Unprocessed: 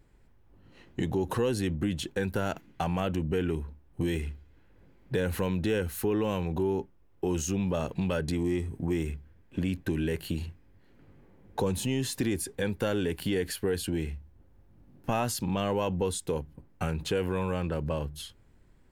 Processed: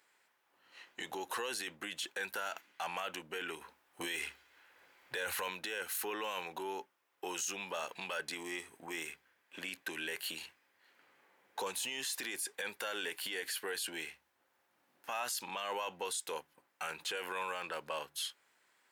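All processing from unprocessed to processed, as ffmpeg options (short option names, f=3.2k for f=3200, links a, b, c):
-filter_complex "[0:a]asettb=1/sr,asplit=3[a][b][c];[a]atrim=end=3.614[d];[b]atrim=start=3.61:end=5.48,asetpts=PTS-STARTPTS,afade=t=in:d=0.004:c=qsin,afade=t=out:st=1.866:d=0.004:c=qsin,asubboost=boost=10:cutoff=79,acontrast=38[e];[c]atrim=start=5.476[f];[d][e]acrossfade=d=0.004:c1=hsin:c2=qsin[g];[g][f]acrossfade=d=0.004:c1=qsin:c2=hsin,highpass=1.1k,alimiter=level_in=9dB:limit=-24dB:level=0:latency=1:release=11,volume=-9dB,volume=4.5dB"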